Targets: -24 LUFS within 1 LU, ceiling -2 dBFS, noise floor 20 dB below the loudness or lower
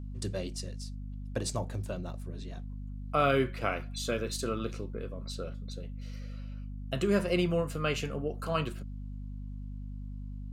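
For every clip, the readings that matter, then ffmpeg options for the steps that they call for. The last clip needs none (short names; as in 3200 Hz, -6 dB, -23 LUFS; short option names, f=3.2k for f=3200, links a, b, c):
hum 50 Hz; harmonics up to 250 Hz; hum level -37 dBFS; loudness -34.5 LUFS; peak -14.5 dBFS; loudness target -24.0 LUFS
-> -af "bandreject=f=50:t=h:w=6,bandreject=f=100:t=h:w=6,bandreject=f=150:t=h:w=6,bandreject=f=200:t=h:w=6,bandreject=f=250:t=h:w=6"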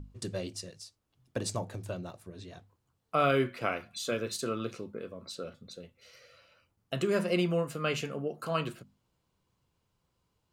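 hum none; loudness -33.5 LUFS; peak -14.5 dBFS; loudness target -24.0 LUFS
-> -af "volume=9.5dB"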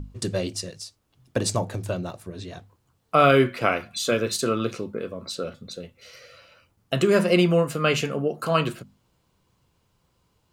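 loudness -24.0 LUFS; peak -5.0 dBFS; noise floor -69 dBFS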